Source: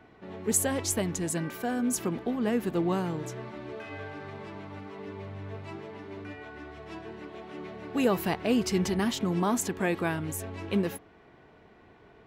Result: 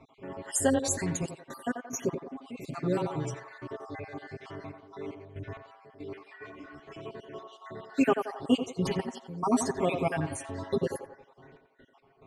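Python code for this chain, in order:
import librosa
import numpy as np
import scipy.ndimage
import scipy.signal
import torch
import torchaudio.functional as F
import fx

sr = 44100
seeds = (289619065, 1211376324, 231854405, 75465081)

y = fx.spec_dropout(x, sr, seeds[0], share_pct=58)
y = scipy.signal.sosfilt(scipy.signal.butter(4, 10000.0, 'lowpass', fs=sr, output='sos'), y)
y = y + 0.98 * np.pad(y, (int(7.4 * sr / 1000.0), 0))[:len(y)]
y = fx.step_gate(y, sr, bpm=70, pattern='xxxxxx.x.x..xxxx', floor_db=-12.0, edge_ms=4.5)
y = fx.echo_banded(y, sr, ms=88, feedback_pct=54, hz=810.0, wet_db=-5.0)
y = fx.ensemble(y, sr, at=(6.18, 6.93), fade=0.02)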